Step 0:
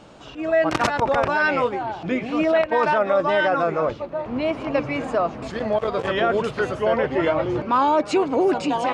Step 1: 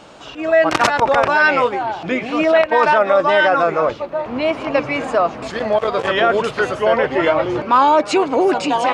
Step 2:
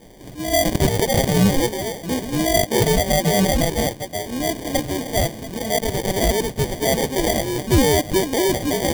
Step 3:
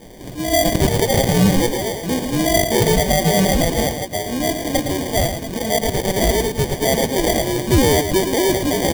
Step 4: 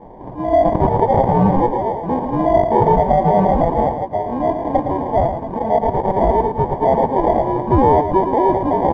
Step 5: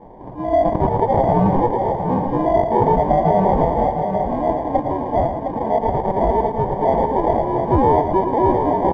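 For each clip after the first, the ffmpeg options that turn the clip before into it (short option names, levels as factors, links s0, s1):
-af "lowshelf=f=340:g=-9,volume=2.37"
-af "acrusher=samples=33:mix=1:aa=0.000001,equalizer=f=1200:w=0.5:g=-9"
-filter_complex "[0:a]asplit=2[s0][s1];[s1]acompressor=threshold=0.0398:ratio=6,volume=0.75[s2];[s0][s2]amix=inputs=2:normalize=0,aecho=1:1:112:0.398"
-af "lowpass=f=930:t=q:w=5,volume=0.891"
-af "aecho=1:1:710:0.473,volume=0.75"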